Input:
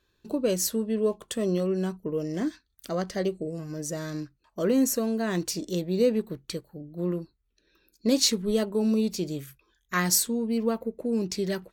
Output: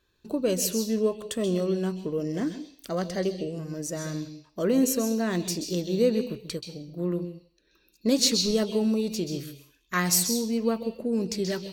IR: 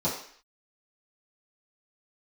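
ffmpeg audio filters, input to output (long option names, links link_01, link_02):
-filter_complex "[0:a]asplit=2[link_01][link_02];[link_02]highshelf=frequency=2000:width_type=q:width=3:gain=11[link_03];[1:a]atrim=start_sample=2205,adelay=129[link_04];[link_03][link_04]afir=irnorm=-1:irlink=0,volume=-25dB[link_05];[link_01][link_05]amix=inputs=2:normalize=0"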